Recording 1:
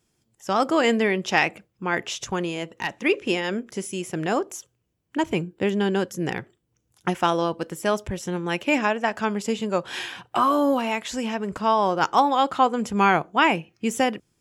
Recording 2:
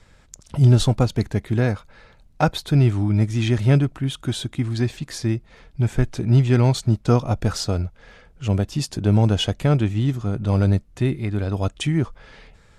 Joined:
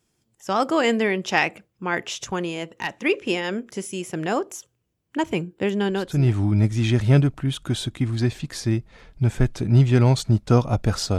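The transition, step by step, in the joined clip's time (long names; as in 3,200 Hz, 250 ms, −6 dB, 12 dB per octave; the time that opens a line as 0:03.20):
recording 1
0:06.13: continue with recording 2 from 0:02.71, crossfade 0.52 s linear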